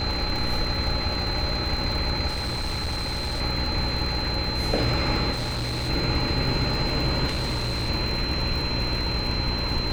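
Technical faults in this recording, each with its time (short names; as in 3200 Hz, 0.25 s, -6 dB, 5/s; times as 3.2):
buzz 60 Hz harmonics 9 -31 dBFS
crackle 75/s -30 dBFS
tone 4100 Hz -29 dBFS
2.27–3.42 clipped -24.5 dBFS
5.32–5.9 clipped -25 dBFS
7.27–7.9 clipped -23 dBFS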